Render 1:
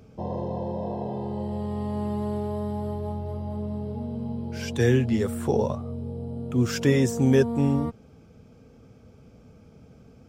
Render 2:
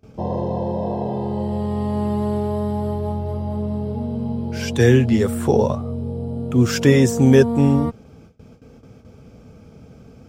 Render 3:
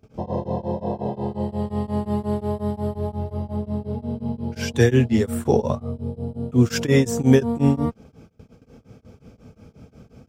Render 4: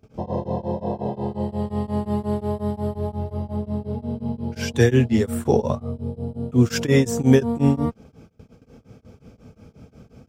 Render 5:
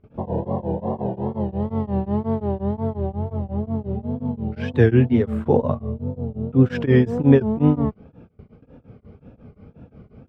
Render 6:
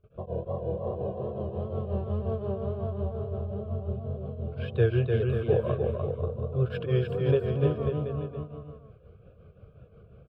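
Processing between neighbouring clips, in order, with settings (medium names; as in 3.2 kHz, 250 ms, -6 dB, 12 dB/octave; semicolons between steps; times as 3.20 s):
gate with hold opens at -43 dBFS; trim +7 dB
tremolo of two beating tones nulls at 5.6 Hz
no audible change
wow and flutter 130 cents; distance through air 440 m; trim +2 dB
static phaser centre 1.3 kHz, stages 8; bouncing-ball echo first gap 300 ms, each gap 0.8×, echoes 5; trim -5.5 dB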